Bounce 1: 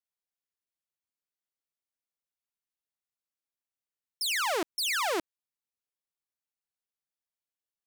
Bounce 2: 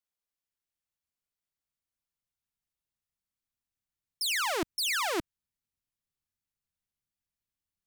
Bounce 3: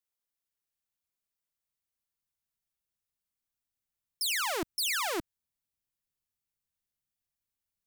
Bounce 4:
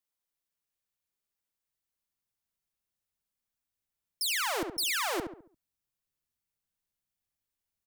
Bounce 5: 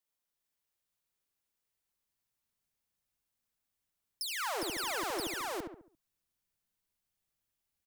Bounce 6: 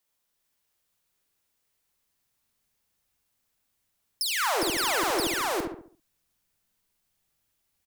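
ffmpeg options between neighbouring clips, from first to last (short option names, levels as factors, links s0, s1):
-af "asubboost=boost=6.5:cutoff=190"
-af "asoftclip=type=hard:threshold=0.0794,crystalizer=i=0.5:c=0,volume=0.794"
-filter_complex "[0:a]asplit=2[s0][s1];[s1]adelay=69,lowpass=f=1500:p=1,volume=0.562,asplit=2[s2][s3];[s3]adelay=69,lowpass=f=1500:p=1,volume=0.42,asplit=2[s4][s5];[s5]adelay=69,lowpass=f=1500:p=1,volume=0.42,asplit=2[s6][s7];[s7]adelay=69,lowpass=f=1500:p=1,volume=0.42,asplit=2[s8][s9];[s9]adelay=69,lowpass=f=1500:p=1,volume=0.42[s10];[s0][s2][s4][s6][s8][s10]amix=inputs=6:normalize=0"
-filter_complex "[0:a]aecho=1:1:69|215|248|405:0.282|0.133|0.112|0.668,acrossover=split=1400|3800[s0][s1][s2];[s0]acompressor=threshold=0.0178:ratio=4[s3];[s1]acompressor=threshold=0.00501:ratio=4[s4];[s2]acompressor=threshold=0.01:ratio=4[s5];[s3][s4][s5]amix=inputs=3:normalize=0"
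-filter_complex "[0:a]asplit=2[s0][s1];[s1]adelay=48,volume=0.335[s2];[s0][s2]amix=inputs=2:normalize=0,volume=2.82"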